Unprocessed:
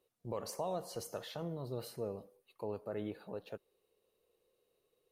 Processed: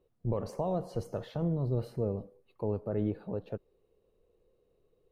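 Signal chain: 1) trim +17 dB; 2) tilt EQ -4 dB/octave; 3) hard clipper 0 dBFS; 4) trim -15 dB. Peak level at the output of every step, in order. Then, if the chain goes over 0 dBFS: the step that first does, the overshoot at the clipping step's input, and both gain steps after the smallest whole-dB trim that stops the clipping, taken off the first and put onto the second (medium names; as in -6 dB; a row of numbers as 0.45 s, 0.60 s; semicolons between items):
-10.0 dBFS, -6.0 dBFS, -6.0 dBFS, -21.0 dBFS; nothing clips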